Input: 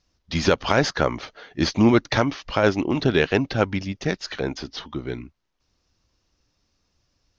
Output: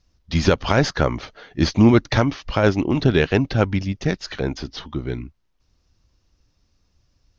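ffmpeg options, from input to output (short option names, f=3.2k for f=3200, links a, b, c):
-af "lowshelf=f=160:g=10"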